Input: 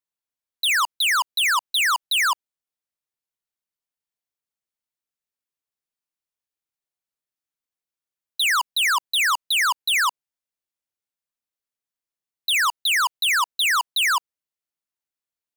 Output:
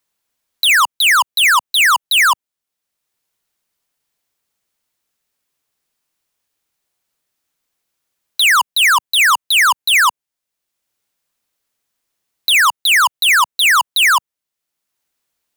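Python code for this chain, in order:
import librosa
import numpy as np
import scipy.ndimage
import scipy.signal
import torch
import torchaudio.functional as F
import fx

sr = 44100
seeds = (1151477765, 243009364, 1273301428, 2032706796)

p1 = fx.dynamic_eq(x, sr, hz=4600.0, q=2.1, threshold_db=-37.0, ratio=4.0, max_db=-6)
p2 = fx.quant_dither(p1, sr, seeds[0], bits=6, dither='none')
p3 = p1 + F.gain(torch.from_numpy(p2), -3.5).numpy()
p4 = fx.band_squash(p3, sr, depth_pct=40)
y = F.gain(torch.from_numpy(p4), 4.5).numpy()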